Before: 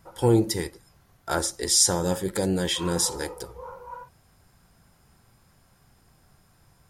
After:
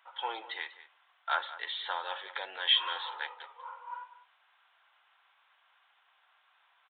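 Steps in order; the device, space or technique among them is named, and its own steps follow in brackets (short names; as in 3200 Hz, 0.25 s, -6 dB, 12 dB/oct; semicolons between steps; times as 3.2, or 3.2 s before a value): outdoor echo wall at 33 m, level -15 dB; musical greeting card (downsampling 8000 Hz; HPF 890 Hz 24 dB/oct; bell 3100 Hz +5 dB 0.59 oct)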